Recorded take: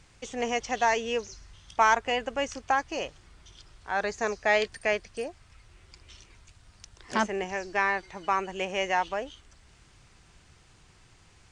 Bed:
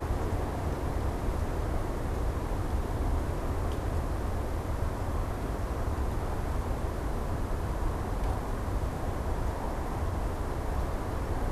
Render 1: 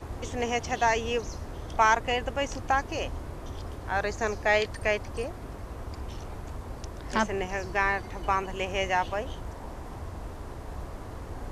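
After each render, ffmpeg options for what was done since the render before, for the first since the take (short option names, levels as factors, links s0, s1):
-filter_complex "[1:a]volume=0.447[s0];[0:a][s0]amix=inputs=2:normalize=0"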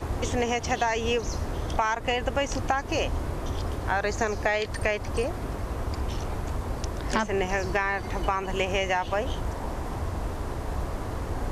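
-filter_complex "[0:a]asplit=2[s0][s1];[s1]alimiter=limit=0.119:level=0:latency=1:release=228,volume=1.41[s2];[s0][s2]amix=inputs=2:normalize=0,acompressor=threshold=0.0891:ratio=12"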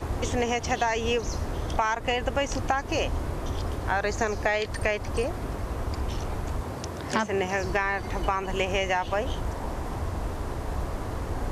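-filter_complex "[0:a]asettb=1/sr,asplit=3[s0][s1][s2];[s0]atrim=end=6.634[s3];[s1]atrim=start=6.63:end=7.61,asetpts=PTS-STARTPTS,afade=t=in:d=0.004:c=qsin,afade=t=out:st=0.976:d=0.004:c=qsin,highpass=f=79:w=0.5412,highpass=f=79:w=1.3066[s4];[s2]atrim=start=7.606[s5];[s3][s4]acrossfade=d=0.004:c1=hsin:c2=qsin[s6];[s6][s5]acrossfade=d=0.004:c1=qsin:c2=hsin"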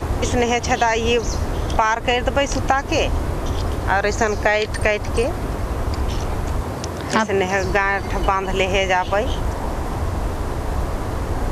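-af "volume=2.51"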